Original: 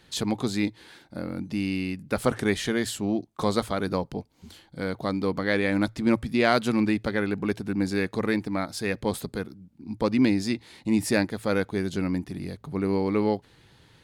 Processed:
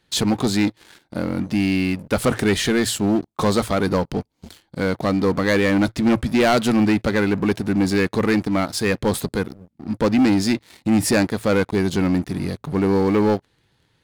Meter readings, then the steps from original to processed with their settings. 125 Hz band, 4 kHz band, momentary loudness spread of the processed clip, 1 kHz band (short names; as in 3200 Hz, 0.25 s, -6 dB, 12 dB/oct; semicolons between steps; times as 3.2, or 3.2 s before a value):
+7.5 dB, +7.5 dB, 9 LU, +6.5 dB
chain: sample leveller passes 3; gain -2 dB